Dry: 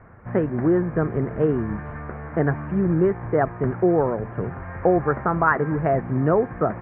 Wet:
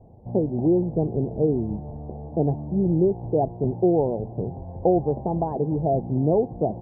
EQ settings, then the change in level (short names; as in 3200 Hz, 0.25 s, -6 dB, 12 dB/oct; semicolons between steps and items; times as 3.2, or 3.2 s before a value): elliptic low-pass 820 Hz, stop band 40 dB; air absorption 300 m; 0.0 dB